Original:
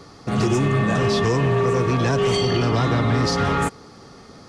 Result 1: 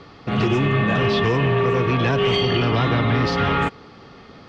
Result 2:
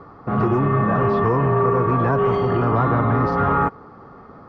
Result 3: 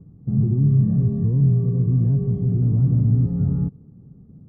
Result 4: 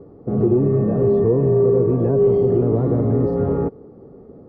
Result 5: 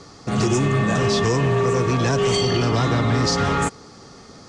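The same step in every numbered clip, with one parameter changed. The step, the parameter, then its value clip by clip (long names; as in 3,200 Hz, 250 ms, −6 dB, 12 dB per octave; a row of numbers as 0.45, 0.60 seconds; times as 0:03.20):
low-pass with resonance, frequency: 3,000, 1,200, 160, 450, 7,600 Hertz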